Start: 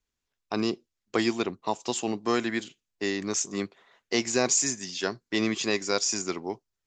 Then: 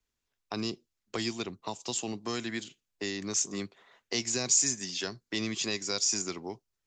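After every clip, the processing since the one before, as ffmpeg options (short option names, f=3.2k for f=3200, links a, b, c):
-filter_complex "[0:a]acrossover=split=160|3000[a][b][c];[b]acompressor=threshold=-37dB:ratio=3[d];[a][d][c]amix=inputs=3:normalize=0"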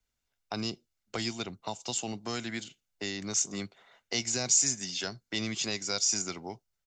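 -af "aecho=1:1:1.4:0.34"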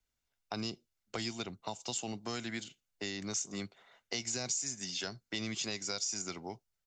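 -af "acompressor=threshold=-30dB:ratio=6,volume=-2.5dB"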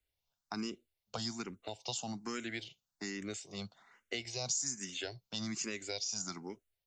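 -filter_complex "[0:a]asplit=2[a][b];[b]afreqshift=1.2[c];[a][c]amix=inputs=2:normalize=1,volume=1.5dB"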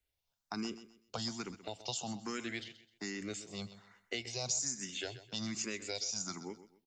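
-af "aecho=1:1:129|258|387:0.2|0.0579|0.0168"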